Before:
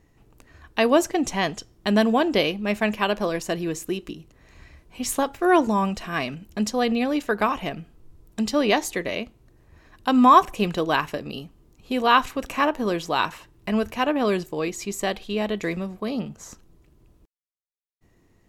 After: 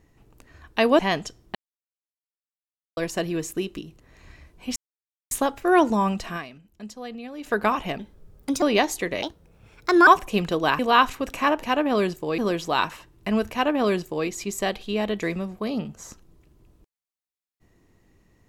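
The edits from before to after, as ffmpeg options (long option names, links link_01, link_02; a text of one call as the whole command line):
ffmpeg -i in.wav -filter_complex "[0:a]asplit=14[link_01][link_02][link_03][link_04][link_05][link_06][link_07][link_08][link_09][link_10][link_11][link_12][link_13][link_14];[link_01]atrim=end=0.992[link_15];[link_02]atrim=start=1.308:end=1.87,asetpts=PTS-STARTPTS,afade=type=out:start_time=0.558:duration=0.004:curve=hsin[link_16];[link_03]atrim=start=1.87:end=3.29,asetpts=PTS-STARTPTS,volume=0[link_17];[link_04]atrim=start=3.29:end=5.08,asetpts=PTS-STARTPTS,afade=type=in:duration=0.004:curve=hsin,afade=type=out:start_time=1.786:duration=0.004:curve=hsin,apad=pad_dur=0.55[link_18];[link_05]atrim=start=5.08:end=6.43,asetpts=PTS-STARTPTS,afade=type=in:duration=0.004:curve=hsin,afade=type=out:start_time=1.05:duration=0.3:curve=exp:silence=0.199526[link_19];[link_06]atrim=start=6.43:end=6.94,asetpts=PTS-STARTPTS,volume=-14dB[link_20];[link_07]atrim=start=6.94:end=7.754,asetpts=PTS-STARTPTS,afade=type=in:duration=0.3:curve=exp:silence=0.199526[link_21];[link_08]atrim=start=7.75:end=8.56,asetpts=PTS-STARTPTS,asetrate=55566,aresample=44100[link_22];[link_09]atrim=start=8.556:end=9.164[link_23];[link_10]atrim=start=9.16:end=10.33,asetpts=PTS-STARTPTS,asetrate=60858,aresample=44100,atrim=end_sample=37389,asetpts=PTS-STARTPTS[link_24];[link_11]atrim=start=10.326:end=11.052[link_25];[link_12]atrim=start=11.948:end=12.792[link_26];[link_13]atrim=start=13.928:end=14.682[link_27];[link_14]atrim=start=12.788[link_28];[link_16][link_17][link_18][link_19][link_20][link_21]concat=n=6:v=0:a=1[link_29];[link_15][link_29]acrossfade=duration=0.004:curve1=hsin:curve2=hsin[link_30];[link_30][link_22]acrossfade=duration=0.004:curve1=hsin:curve2=hsin[link_31];[link_31][link_23]acrossfade=duration=0.004:curve1=hsin:curve2=hsin[link_32];[link_32][link_24]acrossfade=duration=0.004:curve1=hsin:curve2=hsin[link_33];[link_33][link_25]acrossfade=duration=0.004:curve1=hsin:curve2=hsin[link_34];[link_34][link_26]acrossfade=duration=0.004:curve1=hsin:curve2=hsin[link_35];[link_35][link_27]acrossfade=duration=0.004:curve1=hsin:curve2=hsin[link_36];[link_36][link_28]acrossfade=duration=0.004:curve1=hsin:curve2=hsin" out.wav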